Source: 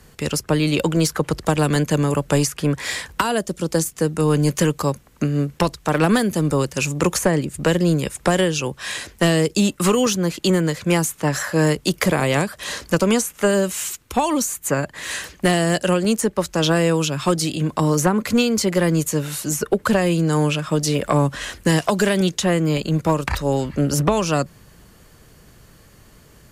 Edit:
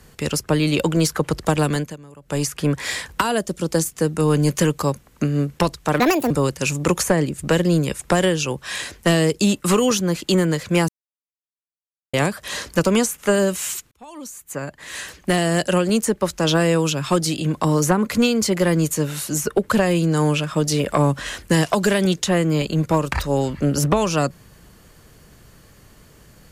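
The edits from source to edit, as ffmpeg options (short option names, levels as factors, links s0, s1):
-filter_complex "[0:a]asplit=8[s0][s1][s2][s3][s4][s5][s6][s7];[s0]atrim=end=1.97,asetpts=PTS-STARTPTS,afade=t=out:st=1.51:d=0.46:c=qsin:silence=0.0668344[s8];[s1]atrim=start=1.97:end=2.21,asetpts=PTS-STARTPTS,volume=0.0668[s9];[s2]atrim=start=2.21:end=6.004,asetpts=PTS-STARTPTS,afade=t=in:d=0.46:c=qsin:silence=0.0668344[s10];[s3]atrim=start=6:end=6.46,asetpts=PTS-STARTPTS,asetrate=66591,aresample=44100,atrim=end_sample=13434,asetpts=PTS-STARTPTS[s11];[s4]atrim=start=6.456:end=11.04,asetpts=PTS-STARTPTS,afade=t=out:st=4.58:d=0.004:c=hsin[s12];[s5]atrim=start=11.04:end=12.29,asetpts=PTS-STARTPTS,volume=0[s13];[s6]atrim=start=12.29:end=14.07,asetpts=PTS-STARTPTS,afade=t=in:d=0.004:c=hsin,afade=t=out:st=1.776:d=0.004:c=hsin[s14];[s7]atrim=start=14.07,asetpts=PTS-STARTPTS,afade=t=in:d=1.72[s15];[s8][s9][s10]concat=n=3:v=0:a=1[s16];[s16][s11]acrossfade=d=0.004:c1=hsin:c2=hsin[s17];[s12][s13][s14][s15]concat=n=4:v=0:a=1[s18];[s17][s18]acrossfade=d=0.004:c1=hsin:c2=hsin"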